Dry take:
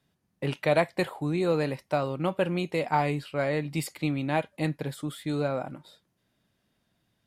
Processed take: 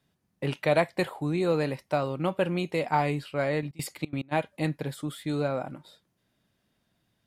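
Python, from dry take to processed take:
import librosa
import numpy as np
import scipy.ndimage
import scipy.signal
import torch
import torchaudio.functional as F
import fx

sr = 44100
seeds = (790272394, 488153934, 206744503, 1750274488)

y = fx.step_gate(x, sr, bpm=178, pattern='xxx.x..x.', floor_db=-24.0, edge_ms=4.5, at=(3.61, 4.31), fade=0.02)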